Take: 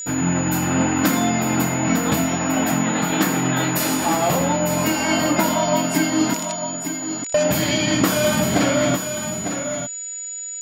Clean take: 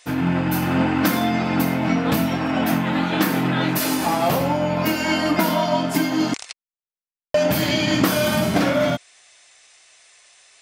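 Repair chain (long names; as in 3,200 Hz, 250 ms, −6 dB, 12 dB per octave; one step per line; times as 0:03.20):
notch filter 6,900 Hz, Q 30
echo removal 901 ms −8 dB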